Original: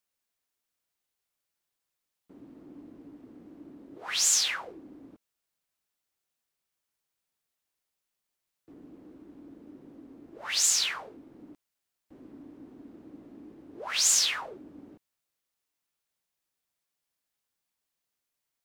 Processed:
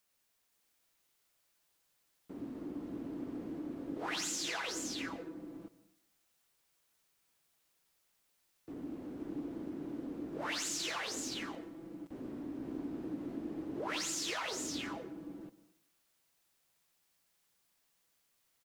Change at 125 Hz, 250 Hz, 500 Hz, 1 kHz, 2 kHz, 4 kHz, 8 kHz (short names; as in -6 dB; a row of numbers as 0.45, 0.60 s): n/a, +7.5 dB, +4.5 dB, -1.0 dB, -5.0 dB, -10.5 dB, -13.5 dB